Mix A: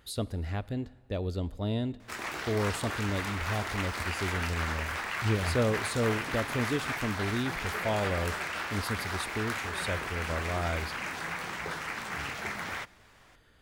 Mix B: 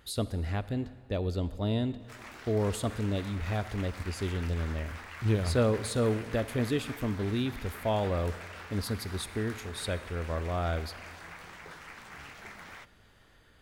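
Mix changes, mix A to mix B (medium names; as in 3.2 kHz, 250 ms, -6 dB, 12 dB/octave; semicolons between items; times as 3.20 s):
speech: send +7.5 dB; background -11.0 dB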